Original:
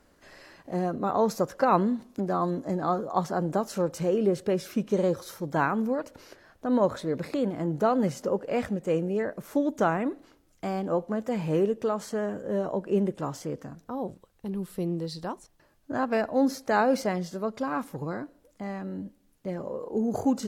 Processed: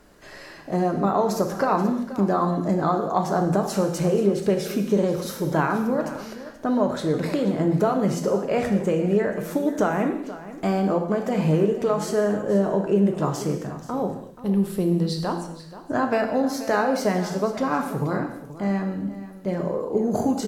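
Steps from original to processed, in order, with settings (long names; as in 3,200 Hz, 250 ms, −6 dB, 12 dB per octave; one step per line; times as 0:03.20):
downward compressor, threshold −26 dBFS, peak gain reduction 9.5 dB
single-tap delay 480 ms −15 dB
reverb whose tail is shaped and stops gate 300 ms falling, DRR 4 dB
level +7 dB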